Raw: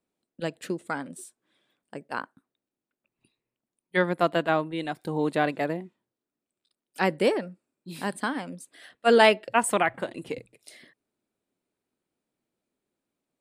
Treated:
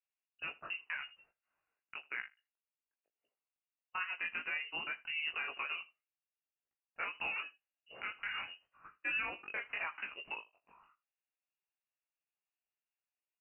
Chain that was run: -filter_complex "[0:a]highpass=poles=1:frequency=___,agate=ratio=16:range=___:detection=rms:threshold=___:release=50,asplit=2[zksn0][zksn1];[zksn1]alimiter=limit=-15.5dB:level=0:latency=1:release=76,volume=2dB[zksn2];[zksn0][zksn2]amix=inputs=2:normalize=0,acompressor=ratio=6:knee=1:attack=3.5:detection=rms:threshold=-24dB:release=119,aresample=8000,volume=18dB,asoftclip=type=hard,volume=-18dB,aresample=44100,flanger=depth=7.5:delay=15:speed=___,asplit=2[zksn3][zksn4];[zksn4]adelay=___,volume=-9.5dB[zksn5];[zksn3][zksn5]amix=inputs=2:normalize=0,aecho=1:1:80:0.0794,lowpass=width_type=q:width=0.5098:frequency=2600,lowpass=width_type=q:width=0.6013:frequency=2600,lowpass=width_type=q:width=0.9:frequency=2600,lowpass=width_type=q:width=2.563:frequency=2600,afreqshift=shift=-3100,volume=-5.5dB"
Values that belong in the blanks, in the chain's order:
1000, -9dB, -49dB, 0.89, 19